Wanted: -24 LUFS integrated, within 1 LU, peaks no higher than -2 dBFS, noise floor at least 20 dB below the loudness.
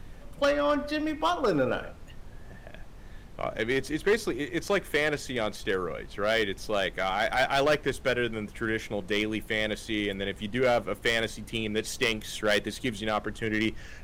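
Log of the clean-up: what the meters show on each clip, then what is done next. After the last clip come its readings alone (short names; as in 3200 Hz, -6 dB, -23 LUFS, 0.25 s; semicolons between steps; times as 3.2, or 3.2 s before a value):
clipped 0.8%; flat tops at -18.0 dBFS; noise floor -46 dBFS; noise floor target -49 dBFS; loudness -28.5 LUFS; peak -18.0 dBFS; loudness target -24.0 LUFS
-> clip repair -18 dBFS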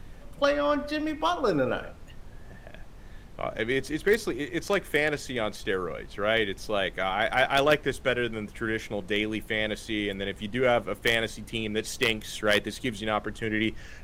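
clipped 0.0%; noise floor -46 dBFS; noise floor target -48 dBFS
-> noise print and reduce 6 dB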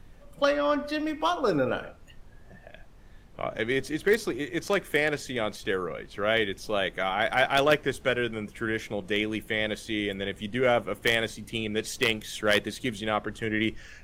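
noise floor -51 dBFS; loudness -28.0 LUFS; peak -9.0 dBFS; loudness target -24.0 LUFS
-> gain +4 dB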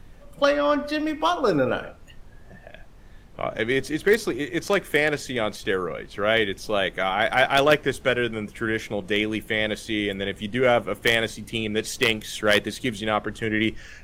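loudness -24.0 LUFS; peak -5.0 dBFS; noise floor -47 dBFS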